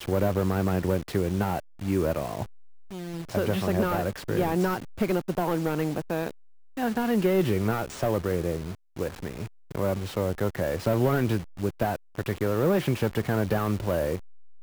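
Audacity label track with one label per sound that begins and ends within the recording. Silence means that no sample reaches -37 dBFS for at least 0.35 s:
2.920000	6.310000	sound
6.770000	14.180000	sound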